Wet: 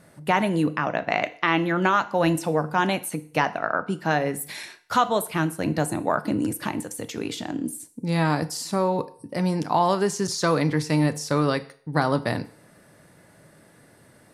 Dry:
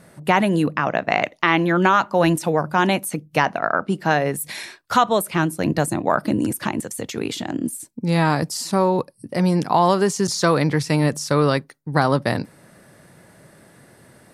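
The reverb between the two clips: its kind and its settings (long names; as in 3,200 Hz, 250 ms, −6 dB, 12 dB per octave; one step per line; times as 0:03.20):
feedback delay network reverb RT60 0.53 s, low-frequency decay 0.7×, high-frequency decay 0.95×, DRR 11 dB
level −4.5 dB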